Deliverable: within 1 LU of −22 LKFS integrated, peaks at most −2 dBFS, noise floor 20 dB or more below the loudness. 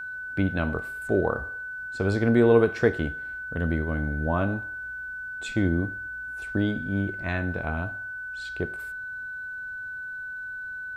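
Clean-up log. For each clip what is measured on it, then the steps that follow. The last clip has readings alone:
interfering tone 1,500 Hz; level of the tone −33 dBFS; integrated loudness −28.0 LKFS; sample peak −8.0 dBFS; target loudness −22.0 LKFS
→ notch filter 1,500 Hz, Q 30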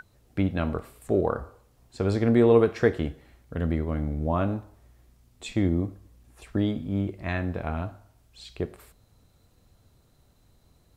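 interfering tone none found; integrated loudness −27.0 LKFS; sample peak −8.0 dBFS; target loudness −22.0 LKFS
→ level +5 dB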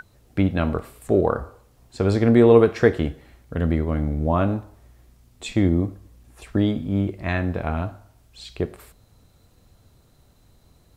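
integrated loudness −22.0 LKFS; sample peak −3.0 dBFS; background noise floor −58 dBFS

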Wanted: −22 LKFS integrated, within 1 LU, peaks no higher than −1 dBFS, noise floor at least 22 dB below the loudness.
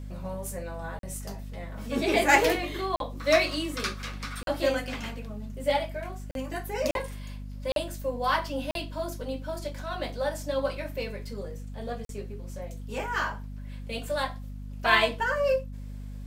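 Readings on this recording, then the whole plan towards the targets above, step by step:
number of dropouts 8; longest dropout 42 ms; mains hum 50 Hz; hum harmonics up to 250 Hz; level of the hum −36 dBFS; integrated loudness −29.5 LKFS; sample peak −4.5 dBFS; target loudness −22.0 LKFS
→ repair the gap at 0:00.99/0:02.96/0:04.43/0:06.31/0:06.91/0:07.72/0:08.71/0:12.05, 42 ms
hum removal 50 Hz, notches 5
level +7.5 dB
brickwall limiter −1 dBFS

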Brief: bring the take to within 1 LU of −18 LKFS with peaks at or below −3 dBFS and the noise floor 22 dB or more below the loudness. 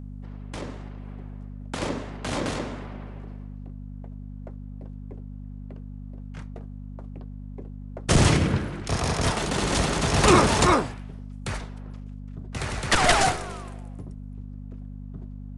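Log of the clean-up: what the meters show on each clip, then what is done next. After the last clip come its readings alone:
mains hum 50 Hz; hum harmonics up to 250 Hz; level of the hum −35 dBFS; integrated loudness −24.0 LKFS; sample peak −4.0 dBFS; target loudness −18.0 LKFS
→ hum removal 50 Hz, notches 5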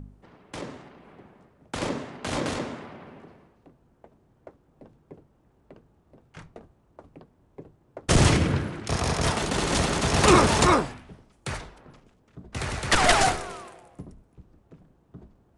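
mains hum none found; integrated loudness −23.5 LKFS; sample peak −3.5 dBFS; target loudness −18.0 LKFS
→ level +5.5 dB
brickwall limiter −3 dBFS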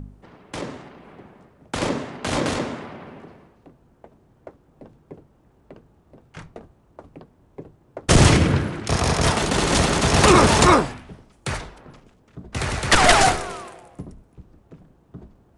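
integrated loudness −18.5 LKFS; sample peak −3.0 dBFS; background noise floor −58 dBFS

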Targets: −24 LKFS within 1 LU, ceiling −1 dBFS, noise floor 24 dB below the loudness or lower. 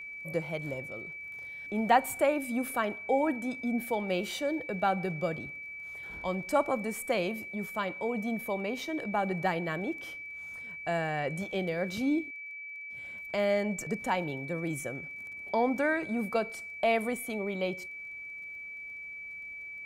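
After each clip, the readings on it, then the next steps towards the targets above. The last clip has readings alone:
crackle rate 23 per second; interfering tone 2,300 Hz; level of the tone −40 dBFS; integrated loudness −32.5 LKFS; sample peak −10.5 dBFS; target loudness −24.0 LKFS
→ click removal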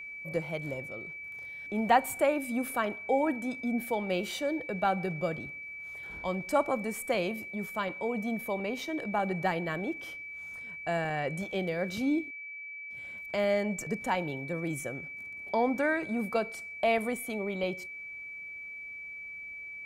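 crackle rate 0 per second; interfering tone 2,300 Hz; level of the tone −40 dBFS
→ notch filter 2,300 Hz, Q 30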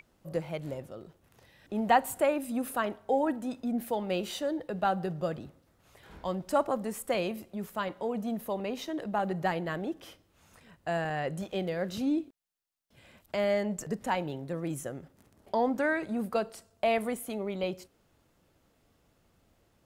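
interfering tone none found; integrated loudness −32.0 LKFS; sample peak −11.0 dBFS; target loudness −24.0 LKFS
→ level +8 dB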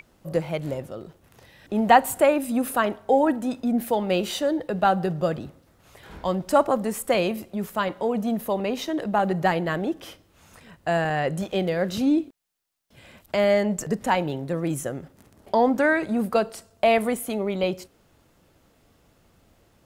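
integrated loudness −24.0 LKFS; sample peak −3.0 dBFS; background noise floor −61 dBFS

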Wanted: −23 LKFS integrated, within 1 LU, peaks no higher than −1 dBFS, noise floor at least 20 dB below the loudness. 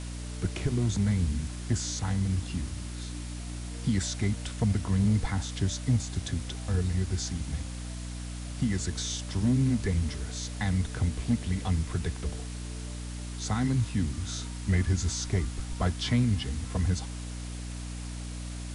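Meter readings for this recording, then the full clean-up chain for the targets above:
mains hum 60 Hz; hum harmonics up to 300 Hz; level of the hum −35 dBFS; background noise floor −38 dBFS; target noise floor −51 dBFS; integrated loudness −31.0 LKFS; sample peak −16.0 dBFS; target loudness −23.0 LKFS
→ hum removal 60 Hz, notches 5
noise reduction from a noise print 13 dB
level +8 dB

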